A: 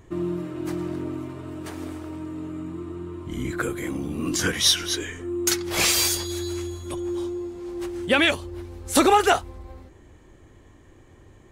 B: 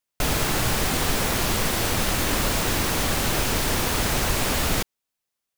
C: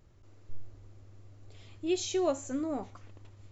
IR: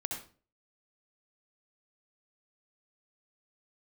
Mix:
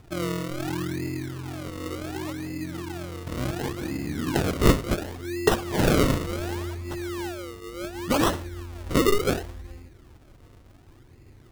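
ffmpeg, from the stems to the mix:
-filter_complex "[0:a]equalizer=frequency=880:width_type=o:width=2.2:gain=-5,volume=-2dB,asplit=2[link_01][link_02];[link_02]volume=-11.5dB[link_03];[2:a]volume=-8dB[link_04];[3:a]atrim=start_sample=2205[link_05];[link_03][link_05]afir=irnorm=-1:irlink=0[link_06];[link_01][link_04][link_06]amix=inputs=3:normalize=0,equalizer=frequency=125:width_type=o:width=0.33:gain=4,equalizer=frequency=630:width_type=o:width=0.33:gain=-6,equalizer=frequency=1250:width_type=o:width=0.33:gain=-10,equalizer=frequency=6300:width_type=o:width=0.33:gain=7,acrusher=samples=37:mix=1:aa=0.000001:lfo=1:lforange=37:lforate=0.69"

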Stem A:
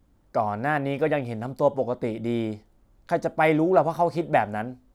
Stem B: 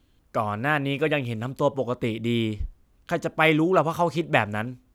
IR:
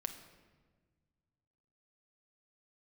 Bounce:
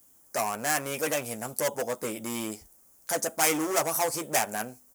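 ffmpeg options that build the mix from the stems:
-filter_complex "[0:a]volume=24dB,asoftclip=hard,volume=-24dB,volume=1dB[link_01];[1:a]volume=-1,adelay=11,volume=-9dB[link_02];[link_01][link_02]amix=inputs=2:normalize=0,highpass=frequency=630:poles=1,aexciter=amount=12.2:drive=4:freq=5700"

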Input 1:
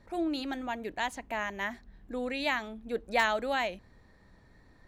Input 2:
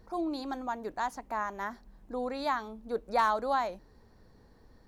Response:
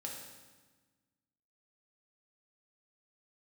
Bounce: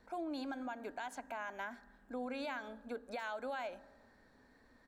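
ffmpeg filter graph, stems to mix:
-filter_complex "[0:a]highpass=680,volume=-5.5dB[link_01];[1:a]bass=frequency=250:gain=-6,treble=frequency=4000:gain=-5,alimiter=level_in=4dB:limit=-24dB:level=0:latency=1:release=175,volume=-4dB,equalizer=frequency=250:width_type=o:width=0.33:gain=11,equalizer=frequency=630:width_type=o:width=0.33:gain=5,equalizer=frequency=1600:width_type=o:width=0.33:gain=12,equalizer=frequency=8000:width_type=o:width=0.33:gain=10,adelay=1.5,volume=-9dB,asplit=3[link_02][link_03][link_04];[link_03]volume=-11dB[link_05];[link_04]apad=whole_len=215111[link_06];[link_01][link_06]sidechaincompress=threshold=-48dB:ratio=8:attack=43:release=169[link_07];[2:a]atrim=start_sample=2205[link_08];[link_05][link_08]afir=irnorm=-1:irlink=0[link_09];[link_07][link_02][link_09]amix=inputs=3:normalize=0,alimiter=level_in=9dB:limit=-24dB:level=0:latency=1:release=101,volume=-9dB"

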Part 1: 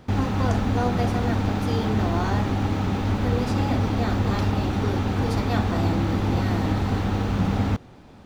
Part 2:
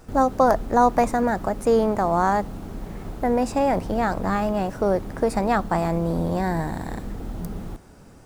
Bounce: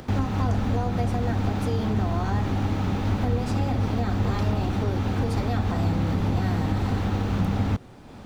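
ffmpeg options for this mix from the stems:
ffmpeg -i stem1.wav -i stem2.wav -filter_complex "[0:a]acompressor=mode=upward:threshold=-35dB:ratio=2.5,volume=0dB[link_01];[1:a]alimiter=limit=-13.5dB:level=0:latency=1,volume=-8dB[link_02];[link_01][link_02]amix=inputs=2:normalize=0,acrossover=split=180[link_03][link_04];[link_04]acompressor=threshold=-27dB:ratio=6[link_05];[link_03][link_05]amix=inputs=2:normalize=0" out.wav

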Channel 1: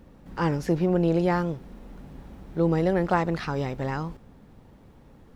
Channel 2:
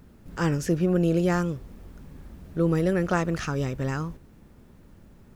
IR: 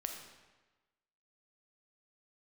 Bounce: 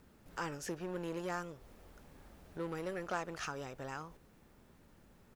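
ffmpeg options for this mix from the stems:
-filter_complex "[0:a]lowpass=1000,asoftclip=type=hard:threshold=-26.5dB,volume=-12.5dB,asplit=2[link_01][link_02];[1:a]volume=-1,adelay=0.6,volume=-4dB[link_03];[link_02]apad=whole_len=236212[link_04];[link_03][link_04]sidechaincompress=threshold=-48dB:ratio=8:attack=47:release=223[link_05];[link_01][link_05]amix=inputs=2:normalize=0,lowshelf=frequency=430:gain=-10"

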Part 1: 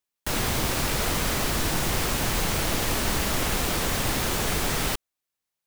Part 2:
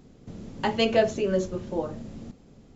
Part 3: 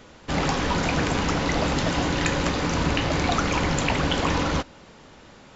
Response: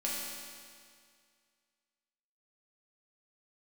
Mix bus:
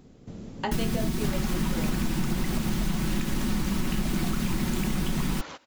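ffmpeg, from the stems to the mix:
-filter_complex "[0:a]lowshelf=frequency=370:width_type=q:width=3:gain=11,aecho=1:1:5.4:0.92,adelay=450,volume=-6dB[link_01];[1:a]acompressor=threshold=-28dB:ratio=2,volume=0dB[link_02];[2:a]highpass=frequency=700:poles=1,acompressor=threshold=-32dB:ratio=4,adelay=950,volume=-6.5dB[link_03];[link_01][link_02]amix=inputs=2:normalize=0,acompressor=threshold=-23dB:ratio=6,volume=0dB[link_04];[link_03][link_04]amix=inputs=2:normalize=0"

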